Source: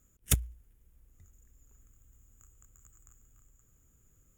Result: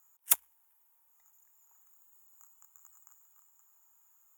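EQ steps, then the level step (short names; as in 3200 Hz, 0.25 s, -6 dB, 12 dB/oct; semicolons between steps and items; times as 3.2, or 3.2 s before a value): resonant high-pass 910 Hz, resonance Q 6.6; high shelf 11000 Hz +11.5 dB; bell 16000 Hz +5 dB 0.81 oct; -4.0 dB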